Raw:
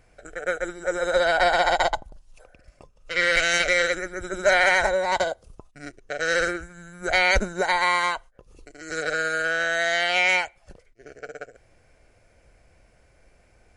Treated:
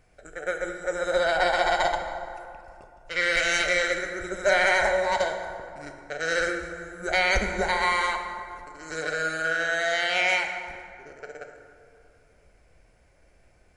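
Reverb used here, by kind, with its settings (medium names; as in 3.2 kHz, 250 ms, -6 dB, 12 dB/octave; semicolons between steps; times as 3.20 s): plate-style reverb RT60 2.4 s, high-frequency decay 0.5×, DRR 4.5 dB; trim -3.5 dB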